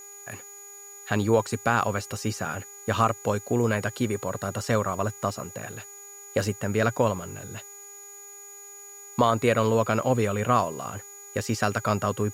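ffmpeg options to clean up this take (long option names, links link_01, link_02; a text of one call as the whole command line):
ffmpeg -i in.wav -af "adeclick=threshold=4,bandreject=frequency=405.4:width_type=h:width=4,bandreject=frequency=810.8:width_type=h:width=4,bandreject=frequency=1216.2:width_type=h:width=4,bandreject=frequency=1621.6:width_type=h:width=4,bandreject=frequency=2027:width_type=h:width=4,bandreject=frequency=2432.4:width_type=h:width=4,bandreject=frequency=6800:width=30,afftdn=noise_reduction=26:noise_floor=-45" out.wav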